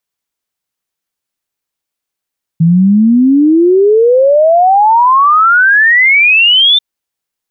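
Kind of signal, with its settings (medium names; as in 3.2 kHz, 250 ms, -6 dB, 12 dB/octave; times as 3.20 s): log sweep 160 Hz -> 3.6 kHz 4.19 s -4 dBFS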